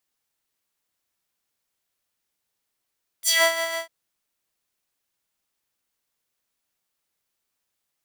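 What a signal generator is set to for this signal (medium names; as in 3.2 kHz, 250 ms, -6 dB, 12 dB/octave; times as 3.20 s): synth patch with tremolo E5, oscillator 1 square, sub -7 dB, noise -16.5 dB, filter highpass, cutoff 1 kHz, Q 1.8, filter envelope 3.5 oct, filter decay 0.18 s, filter sustain 5%, attack 51 ms, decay 0.28 s, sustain -13 dB, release 0.15 s, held 0.50 s, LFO 5.9 Hz, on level 5 dB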